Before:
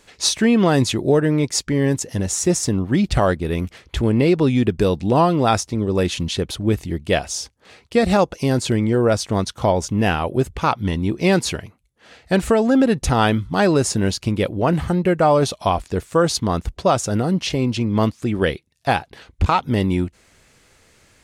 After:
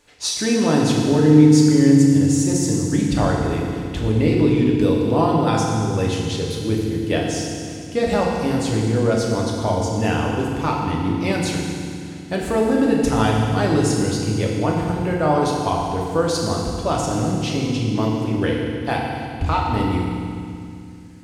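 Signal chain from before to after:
feedback delay network reverb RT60 2.3 s, low-frequency decay 1.55×, high-frequency decay 1×, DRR −2.5 dB
level −6.5 dB

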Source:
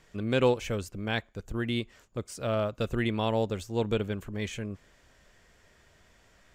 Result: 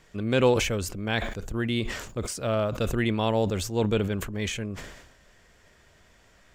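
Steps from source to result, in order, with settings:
level that may fall only so fast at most 56 dB per second
level +2.5 dB

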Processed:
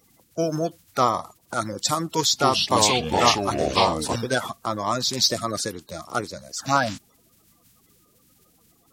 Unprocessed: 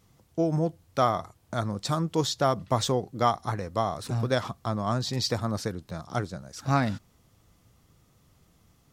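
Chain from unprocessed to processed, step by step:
spectral magnitudes quantised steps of 30 dB
spectral tilt +2.5 dB per octave
0:02.08–0:04.16: delay with pitch and tempo change per echo 254 ms, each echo −4 semitones, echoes 3
level +5 dB

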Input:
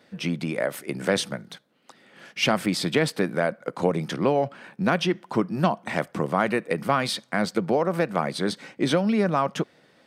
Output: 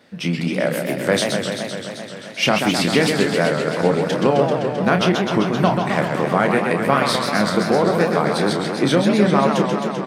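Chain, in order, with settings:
double-tracking delay 29 ms −8 dB
feedback echo with a swinging delay time 130 ms, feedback 79%, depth 204 cents, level −5.5 dB
level +4 dB

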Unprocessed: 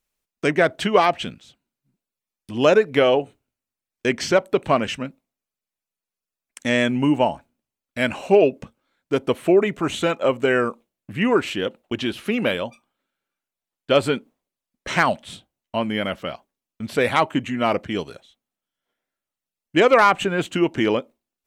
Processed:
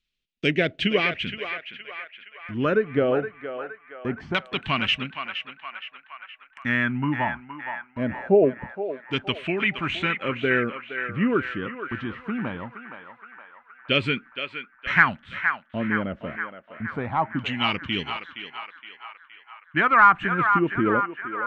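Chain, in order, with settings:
all-pass phaser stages 2, 0.39 Hz, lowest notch 490–1,000 Hz
auto-filter low-pass saw down 0.23 Hz 750–3,500 Hz
feedback echo with a band-pass in the loop 468 ms, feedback 66%, band-pass 1,400 Hz, level −6 dB

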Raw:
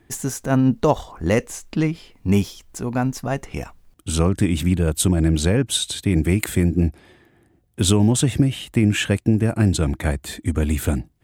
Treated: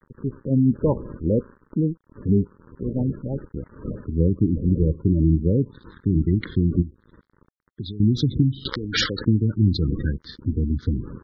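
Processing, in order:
wind on the microphone 390 Hz −34 dBFS
spring reverb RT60 1 s, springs 37 ms, chirp 80 ms, DRR 18 dB
low-pass filter sweep 670 Hz → 4,500 Hz, 0:05.54–0:06.70
dynamic equaliser 2,400 Hz, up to −6 dB, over −40 dBFS, Q 1.2
dead-zone distortion −34.5 dBFS
high-shelf EQ 4,100 Hz −5 dB
phaser with its sweep stopped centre 2,600 Hz, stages 6
0:06.82–0:08.00: downward compressor 16 to 1, threshold −29 dBFS, peak gain reduction 16.5 dB
gate on every frequency bin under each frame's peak −20 dB strong
0:00.41–0:01.09: treble cut that deepens with the level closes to 2,100 Hz, closed at −16 dBFS
0:08.65–0:09.25: every bin compressed towards the loudest bin 10 to 1

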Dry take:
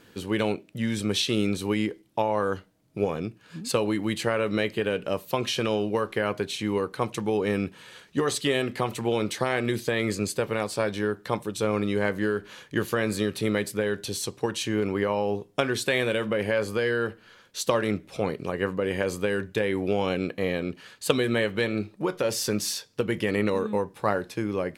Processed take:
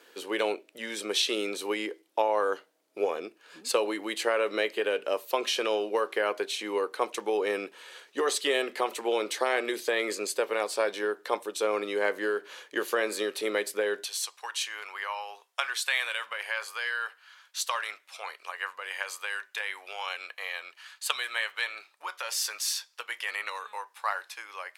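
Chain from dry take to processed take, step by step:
high-pass filter 380 Hz 24 dB per octave, from 0:14.04 920 Hz

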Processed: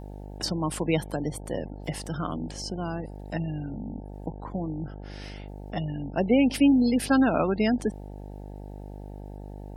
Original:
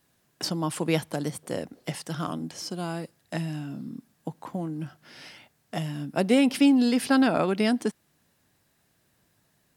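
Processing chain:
0:05.78–0:06.38: variable-slope delta modulation 64 kbit/s
gate on every frequency bin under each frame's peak −25 dB strong
hum with harmonics 50 Hz, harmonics 18, −40 dBFS −5 dB per octave

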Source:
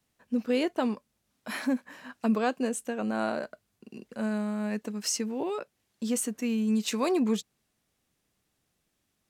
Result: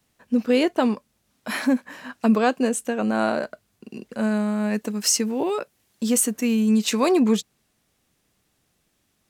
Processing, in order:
0:04.74–0:06.69: high-shelf EQ 8,900 Hz +7 dB
level +7.5 dB

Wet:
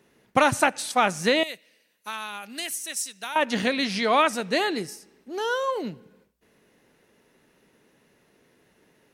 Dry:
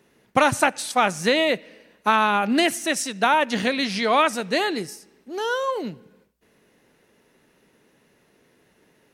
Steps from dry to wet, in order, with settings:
0:01.43–0:03.36: first-order pre-emphasis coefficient 0.9
level −1.5 dB

